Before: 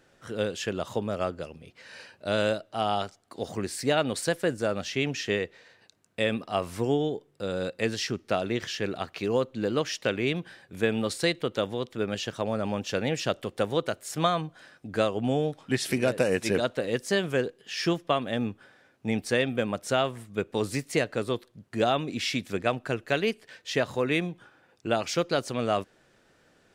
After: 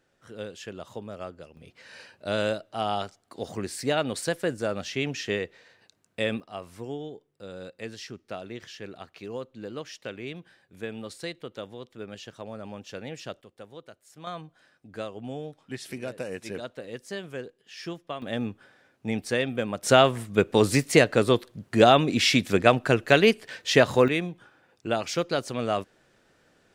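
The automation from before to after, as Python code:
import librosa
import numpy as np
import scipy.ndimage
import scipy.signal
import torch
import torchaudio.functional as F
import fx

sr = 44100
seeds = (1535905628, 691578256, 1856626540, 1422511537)

y = fx.gain(x, sr, db=fx.steps((0.0, -8.5), (1.57, -1.0), (6.4, -10.0), (13.41, -18.0), (14.27, -10.0), (18.22, -1.0), (19.83, 8.0), (24.08, -0.5)))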